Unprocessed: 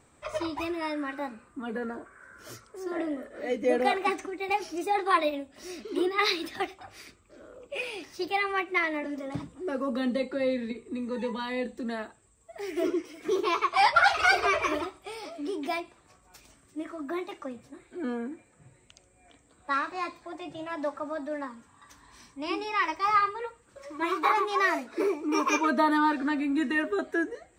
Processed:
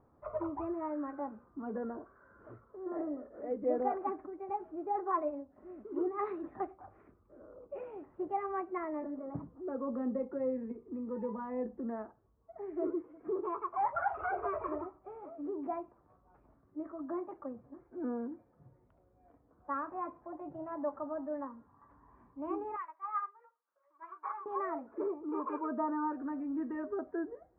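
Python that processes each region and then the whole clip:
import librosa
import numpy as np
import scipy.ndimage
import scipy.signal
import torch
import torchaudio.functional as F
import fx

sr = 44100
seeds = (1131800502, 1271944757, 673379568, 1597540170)

y = fx.chain(x, sr, fx.highpass(hz=1200.0, slope=12),
    fx.upward_expand(threshold_db=-43.0, expansion=1.5), at=(22.76, 24.46))
y = scipy.signal.sosfilt(scipy.signal.cheby2(4, 70, 5100.0, 'lowpass', fs=sr, output='sos'), y)
y = fx.rider(y, sr, range_db=3, speed_s=2.0)
y = y * librosa.db_to_amplitude(-7.0)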